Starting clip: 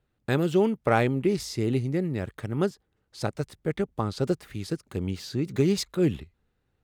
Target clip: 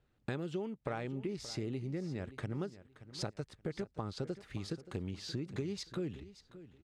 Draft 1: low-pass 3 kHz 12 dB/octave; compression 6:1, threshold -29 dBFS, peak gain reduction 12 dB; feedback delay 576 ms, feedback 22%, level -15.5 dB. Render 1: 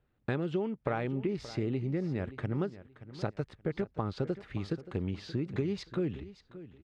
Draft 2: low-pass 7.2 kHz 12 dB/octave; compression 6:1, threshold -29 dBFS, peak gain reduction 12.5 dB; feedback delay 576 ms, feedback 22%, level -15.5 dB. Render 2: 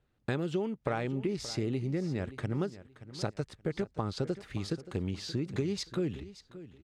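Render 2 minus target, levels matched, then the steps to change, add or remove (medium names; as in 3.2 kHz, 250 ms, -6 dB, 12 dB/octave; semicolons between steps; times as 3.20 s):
compression: peak gain reduction -6 dB
change: compression 6:1, threshold -36.5 dBFS, peak gain reduction 18.5 dB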